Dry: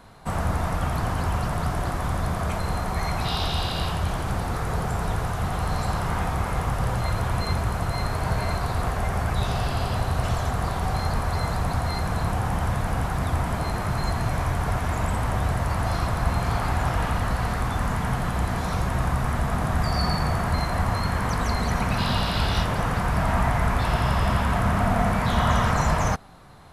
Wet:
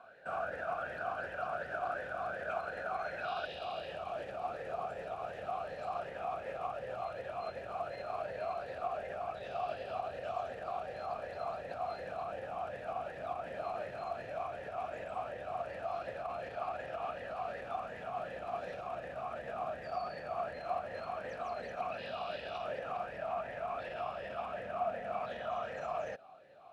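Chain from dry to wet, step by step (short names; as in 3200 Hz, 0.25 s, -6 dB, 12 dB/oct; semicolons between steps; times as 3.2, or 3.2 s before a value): limiter -20.5 dBFS, peak gain reduction 11 dB; bell 1500 Hz +12 dB 0.25 oct, from 3.45 s -5 dB; vowel sweep a-e 2.7 Hz; gain +3 dB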